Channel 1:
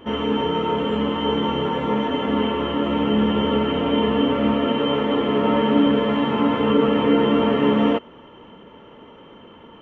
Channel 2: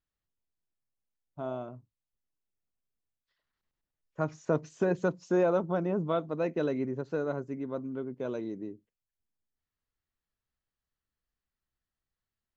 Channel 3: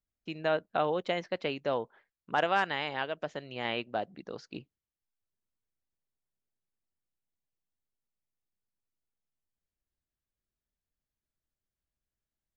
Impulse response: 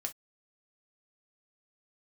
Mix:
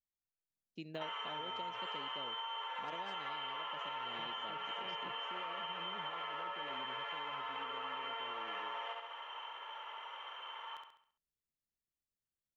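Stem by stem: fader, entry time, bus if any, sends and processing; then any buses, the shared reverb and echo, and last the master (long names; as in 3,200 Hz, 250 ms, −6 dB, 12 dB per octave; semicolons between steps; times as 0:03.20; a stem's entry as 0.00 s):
+1.5 dB, 0.95 s, no send, echo send −4.5 dB, high-pass filter 840 Hz 24 dB per octave; downward compressor, threshold −33 dBFS, peak gain reduction 10 dB
−14.5 dB, 0.00 s, no send, no echo send, brickwall limiter −24 dBFS, peak gain reduction 8 dB
−5.0 dB, 0.50 s, no send, no echo send, high-pass filter 120 Hz; parametric band 1,200 Hz −15 dB 1.6 octaves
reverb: not used
echo: repeating echo 68 ms, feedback 44%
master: downward compressor 10 to 1, threshold −39 dBFS, peak gain reduction 12 dB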